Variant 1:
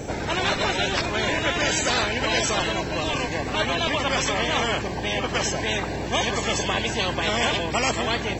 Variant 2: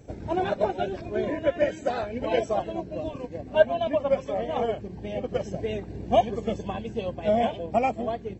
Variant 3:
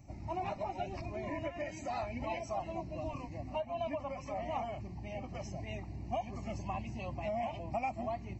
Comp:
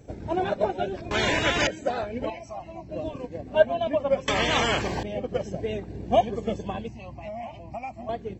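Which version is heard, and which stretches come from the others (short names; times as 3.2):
2
1.11–1.67 from 1
2.3–2.89 from 3
4.28–5.03 from 1
6.88–8.09 from 3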